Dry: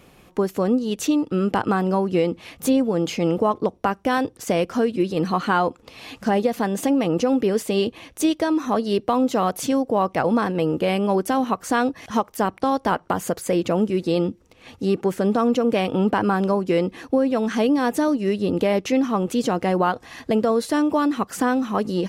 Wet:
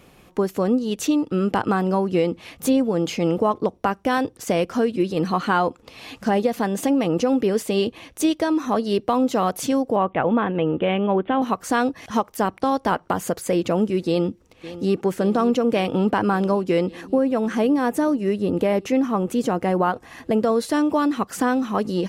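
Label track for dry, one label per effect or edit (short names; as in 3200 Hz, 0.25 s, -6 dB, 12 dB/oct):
9.960000	11.420000	steep low-pass 3600 Hz 96 dB/oct
14.070000	15.030000	echo throw 0.56 s, feedback 80%, level -15 dB
17.010000	20.430000	bell 4200 Hz -6.5 dB 1.4 oct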